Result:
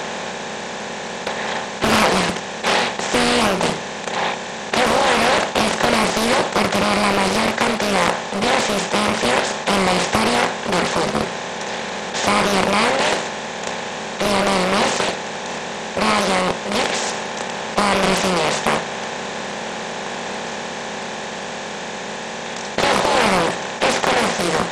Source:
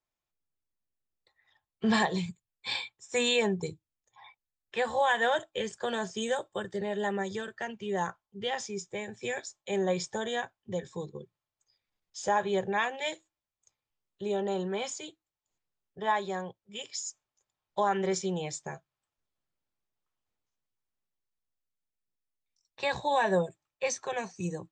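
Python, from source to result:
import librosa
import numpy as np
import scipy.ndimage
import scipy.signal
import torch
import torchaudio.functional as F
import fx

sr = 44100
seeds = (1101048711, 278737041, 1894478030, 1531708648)

y = fx.bin_compress(x, sr, power=0.2)
y = fx.doppler_dist(y, sr, depth_ms=0.79)
y = F.gain(torch.from_numpy(y), 3.0).numpy()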